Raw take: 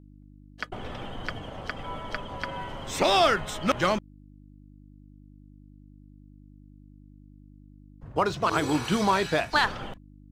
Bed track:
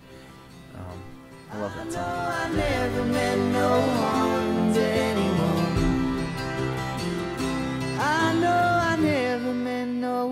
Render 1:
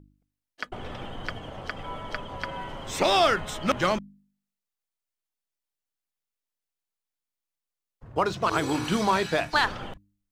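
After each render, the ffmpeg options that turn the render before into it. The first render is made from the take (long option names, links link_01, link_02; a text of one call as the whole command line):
ffmpeg -i in.wav -af "bandreject=frequency=50:width_type=h:width=4,bandreject=frequency=100:width_type=h:width=4,bandreject=frequency=150:width_type=h:width=4,bandreject=frequency=200:width_type=h:width=4,bandreject=frequency=250:width_type=h:width=4,bandreject=frequency=300:width_type=h:width=4" out.wav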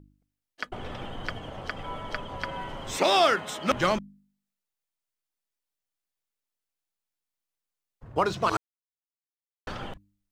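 ffmpeg -i in.wav -filter_complex "[0:a]asettb=1/sr,asplit=3[link_01][link_02][link_03];[link_01]atrim=end=2.974[link_04];[link_02]atrim=start=2.97:end=3.71,asetpts=PTS-STARTPTS,afade=type=in:duration=0.004:curve=qsin,afade=type=out:start_time=0.736:duration=0.004:curve=qsin,highpass=200[link_05];[link_03]atrim=start=3.706[link_06];[link_04][link_05]acrossfade=duration=0.004:curve1=hsin:curve2=qsin[link_07];[link_07][link_06]acrossfade=duration=0.004:curve1=qsin:curve2=hsin,asplit=3[link_08][link_09][link_10];[link_08]atrim=end=8.57,asetpts=PTS-STARTPTS,afade=type=out:start_time=8.566:duration=0.004:curve=hsin[link_11];[link_09]atrim=start=8.57:end=9.67,asetpts=PTS-STARTPTS,volume=0[link_12];[link_10]atrim=start=9.67,asetpts=PTS-STARTPTS,afade=type=in:duration=0.004:curve=hsin[link_13];[link_11][link_12][link_13]concat=n=3:v=0:a=1" out.wav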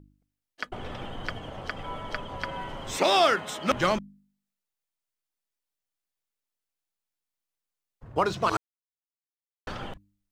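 ffmpeg -i in.wav -af anull out.wav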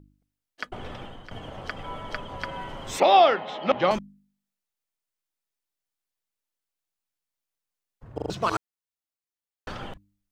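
ffmpeg -i in.wav -filter_complex "[0:a]asettb=1/sr,asplit=3[link_01][link_02][link_03];[link_01]atrim=end=3.004[link_04];[link_02]atrim=start=3:end=3.91,asetpts=PTS-STARTPTS,afade=type=in:duration=0.004:curve=qsin,afade=type=out:start_time=0.906:duration=0.004:curve=qsin,highpass=160,equalizer=frequency=530:width_type=q:width=4:gain=5,equalizer=frequency=780:width_type=q:width=4:gain=9,equalizer=frequency=1500:width_type=q:width=4:gain=-5,lowpass=frequency=4000:width=0.5412,lowpass=frequency=4000:width=1.3066[link_05];[link_03]atrim=start=3.906[link_06];[link_04][link_05]acrossfade=duration=0.004:curve1=hsin:curve2=qsin[link_07];[link_07][link_06]acrossfade=duration=0.004:curve1=qsin:curve2=hsin,asplit=6[link_08][link_09][link_10][link_11][link_12][link_13];[link_08]atrim=end=1.31,asetpts=PTS-STARTPTS,afade=type=out:start_time=0.76:duration=0.55:curve=qsin:silence=0.177828[link_14];[link_09]atrim=start=1.31:end=8.182,asetpts=PTS-STARTPTS,afade=type=in:duration=0.004:curve=hsin:silence=0.177828[link_15];[link_10]atrim=start=8.138:end=8.182[link_16];[link_11]atrim=start=8.138:end=8.182[link_17];[link_12]atrim=start=8.138:end=8.182[link_18];[link_13]atrim=start=8.298[link_19];[link_14][link_15]concat=n=2:v=0:a=1[link_20];[link_20][link_16]acrossfade=duration=0.004:curve1=hsin:curve2=hsin[link_21];[link_21][link_17]acrossfade=duration=0.004:curve1=hsin:curve2=hsin[link_22];[link_22][link_18]acrossfade=duration=0.004:curve1=hsin:curve2=hsin[link_23];[link_23][link_19]acrossfade=duration=0.004:curve1=hsin:curve2=hsin" out.wav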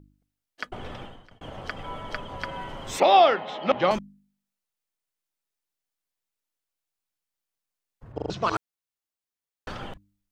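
ffmpeg -i in.wav -filter_complex "[0:a]asplit=3[link_01][link_02][link_03];[link_01]afade=type=out:start_time=8.12:duration=0.02[link_04];[link_02]lowpass=frequency=6600:width=0.5412,lowpass=frequency=6600:width=1.3066,afade=type=in:start_time=8.12:duration=0.02,afade=type=out:start_time=8.55:duration=0.02[link_05];[link_03]afade=type=in:start_time=8.55:duration=0.02[link_06];[link_04][link_05][link_06]amix=inputs=3:normalize=0,asplit=2[link_07][link_08];[link_07]atrim=end=1.41,asetpts=PTS-STARTPTS,afade=type=out:start_time=1.01:duration=0.4[link_09];[link_08]atrim=start=1.41,asetpts=PTS-STARTPTS,afade=type=in:duration=0.004:curve=hsin[link_10];[link_09][link_10]concat=n=2:v=0:a=1" out.wav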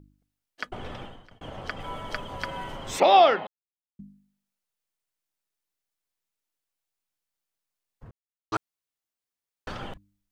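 ffmpeg -i in.wav -filter_complex "[0:a]asettb=1/sr,asplit=3[link_01][link_02][link_03];[link_01]atrim=end=1.804[link_04];[link_02]atrim=start=1.8:end=2.77,asetpts=PTS-STARTPTS,afade=type=in:duration=0.004:curve=qsin,afade=type=out:start_time=0.966:duration=0.004:curve=qsin,highshelf=frequency=7400:gain=9.5[link_05];[link_03]atrim=start=2.766[link_06];[link_04][link_05]acrossfade=duration=0.004:curve1=hsin:curve2=qsin[link_07];[link_07][link_06]acrossfade=duration=0.004:curve1=qsin:curve2=hsin,asplit=5[link_08][link_09][link_10][link_11][link_12];[link_08]atrim=end=3.47,asetpts=PTS-STARTPTS,afade=type=out:start_time=3.466:duration=0.004:curve=hsin[link_13];[link_09]atrim=start=3.47:end=3.99,asetpts=PTS-STARTPTS,volume=0[link_14];[link_10]atrim=start=3.99:end=8.11,asetpts=PTS-STARTPTS,afade=type=in:duration=0.004:curve=hsin,afade=type=out:start_time=4.116:duration=0.004:curve=hsin[link_15];[link_11]atrim=start=8.11:end=8.52,asetpts=PTS-STARTPTS,volume=0[link_16];[link_12]atrim=start=8.52,asetpts=PTS-STARTPTS,afade=type=in:duration=0.004:curve=hsin[link_17];[link_13][link_14][link_15][link_16][link_17]concat=n=5:v=0:a=1" out.wav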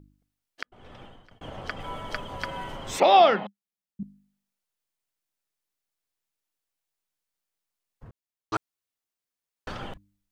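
ffmpeg -i in.wav -filter_complex "[0:a]asettb=1/sr,asplit=3[link_01][link_02][link_03];[link_01]atrim=end=3.194[link_04];[link_02]atrim=start=3.19:end=4.03,asetpts=PTS-STARTPTS,afade=type=in:duration=0.004:curve=qsin,afade=type=out:start_time=0.836:duration=0.004:curve=qsin,equalizer=frequency=200:width_type=o:width=0.32:gain=13.5[link_05];[link_03]atrim=start=4.026[link_06];[link_04][link_05]acrossfade=duration=0.004:curve1=hsin:curve2=qsin[link_07];[link_07][link_06]acrossfade=duration=0.004:curve1=qsin:curve2=hsin,asplit=2[link_08][link_09];[link_08]atrim=end=0.63,asetpts=PTS-STARTPTS,afade=type=out:start_time=0.626:duration=0.004:curve=hsin[link_10];[link_09]atrim=start=0.63,asetpts=PTS-STARTPTS,afade=type=in:duration=0.83[link_11];[link_10][link_11]concat=n=2:v=0:a=1" out.wav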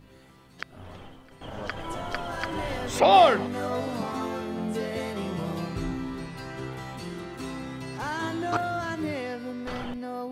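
ffmpeg -i in.wav -i bed.wav -filter_complex "[1:a]volume=-8.5dB[link_01];[0:a][link_01]amix=inputs=2:normalize=0" out.wav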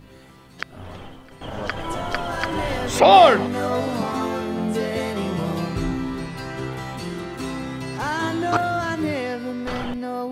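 ffmpeg -i in.wav -af "volume=6.5dB,alimiter=limit=-2dB:level=0:latency=1" out.wav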